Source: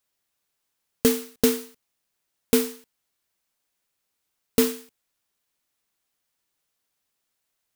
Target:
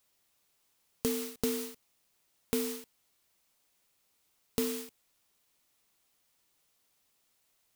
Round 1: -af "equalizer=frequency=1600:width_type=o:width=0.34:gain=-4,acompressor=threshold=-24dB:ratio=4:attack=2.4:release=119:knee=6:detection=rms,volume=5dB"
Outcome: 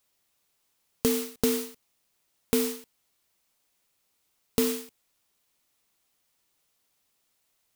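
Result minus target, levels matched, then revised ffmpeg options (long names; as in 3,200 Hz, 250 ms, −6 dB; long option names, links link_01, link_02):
downward compressor: peak gain reduction −7 dB
-af "equalizer=frequency=1600:width_type=o:width=0.34:gain=-4,acompressor=threshold=-33dB:ratio=4:attack=2.4:release=119:knee=6:detection=rms,volume=5dB"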